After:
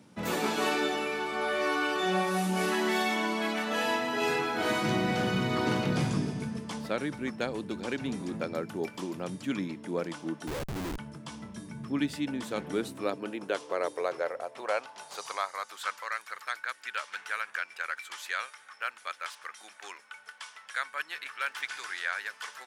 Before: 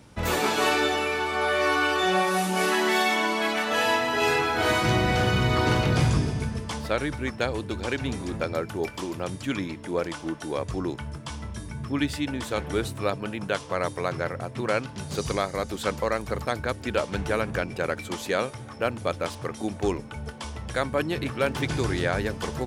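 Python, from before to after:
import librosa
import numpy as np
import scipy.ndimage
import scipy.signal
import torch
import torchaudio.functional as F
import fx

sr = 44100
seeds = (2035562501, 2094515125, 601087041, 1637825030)

y = fx.filter_sweep_highpass(x, sr, from_hz=190.0, to_hz=1500.0, start_s=12.51, end_s=16.14, q=2.0)
y = fx.schmitt(y, sr, flips_db=-31.0, at=(10.47, 10.98))
y = F.gain(torch.from_numpy(y), -6.5).numpy()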